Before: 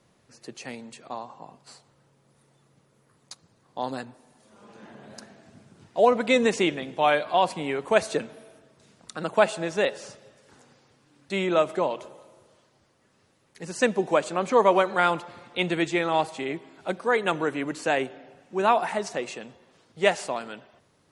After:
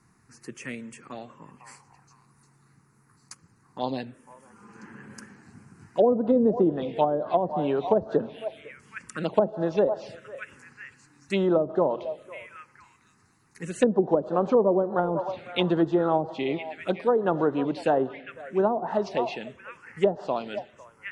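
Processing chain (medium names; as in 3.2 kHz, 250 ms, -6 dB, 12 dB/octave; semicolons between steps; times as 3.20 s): repeats whose band climbs or falls 501 ms, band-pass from 740 Hz, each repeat 1.4 oct, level -11 dB; touch-sensitive phaser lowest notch 560 Hz, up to 2.3 kHz, full sweep at -23 dBFS; low-pass that closes with the level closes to 430 Hz, closed at -19 dBFS; trim +4 dB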